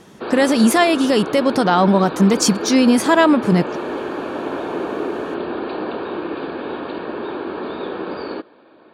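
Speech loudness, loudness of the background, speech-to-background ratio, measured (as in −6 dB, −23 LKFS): −15.5 LKFS, −26.5 LKFS, 11.0 dB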